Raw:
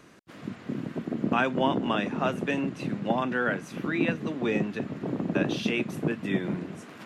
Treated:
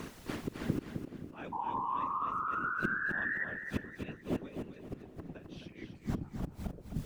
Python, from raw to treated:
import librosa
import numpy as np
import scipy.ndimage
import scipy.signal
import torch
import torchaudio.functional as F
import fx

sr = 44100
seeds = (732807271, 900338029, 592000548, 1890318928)

p1 = fx.tape_stop_end(x, sr, length_s=1.51)
p2 = fx.highpass(p1, sr, hz=59.0, slope=6)
p3 = fx.low_shelf(p2, sr, hz=250.0, db=6.0)
p4 = fx.rider(p3, sr, range_db=4, speed_s=2.0)
p5 = p3 + F.gain(torch.from_numpy(p4), 0.5).numpy()
p6 = p5 * (1.0 - 0.84 / 2.0 + 0.84 / 2.0 * np.cos(2.0 * np.pi * 3.4 * (np.arange(len(p5)) / sr)))
p7 = fx.dmg_noise_colour(p6, sr, seeds[0], colour='pink', level_db=-54.0)
p8 = fx.gate_flip(p7, sr, shuts_db=-22.0, range_db=-25)
p9 = fx.spec_paint(p8, sr, seeds[1], shape='rise', start_s=1.52, length_s=1.93, low_hz=890.0, high_hz=1900.0, level_db=-36.0)
p10 = fx.whisperise(p9, sr, seeds[2])
y = fx.echo_feedback(p10, sr, ms=261, feedback_pct=36, wet_db=-7.0)